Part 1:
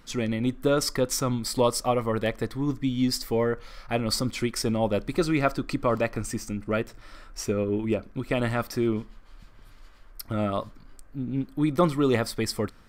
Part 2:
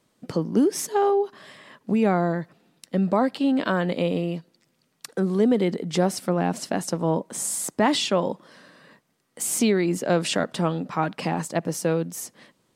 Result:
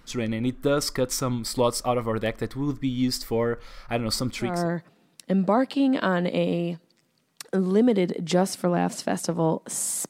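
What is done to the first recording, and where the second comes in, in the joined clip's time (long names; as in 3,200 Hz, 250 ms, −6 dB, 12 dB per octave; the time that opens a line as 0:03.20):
part 1
0:04.54: continue with part 2 from 0:02.18, crossfade 0.30 s linear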